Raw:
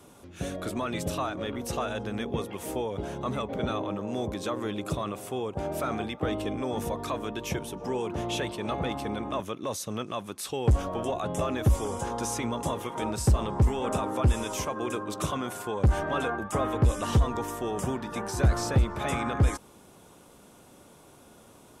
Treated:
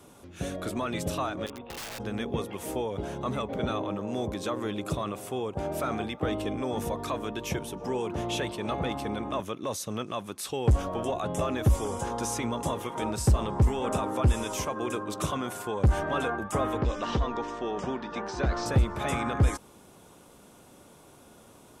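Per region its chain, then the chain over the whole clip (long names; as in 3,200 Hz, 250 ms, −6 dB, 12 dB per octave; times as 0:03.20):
0:01.46–0:02.00: Chebyshev low-pass with heavy ripple 3,700 Hz, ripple 9 dB + wrap-around overflow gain 33 dB
0:16.81–0:18.66: low-pass filter 5,400 Hz 24 dB per octave + parametric band 99 Hz −12.5 dB 1.1 octaves
whole clip: no processing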